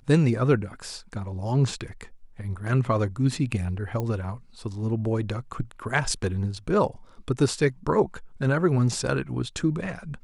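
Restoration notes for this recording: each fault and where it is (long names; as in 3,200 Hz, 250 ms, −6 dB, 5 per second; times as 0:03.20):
0:04.00: click −17 dBFS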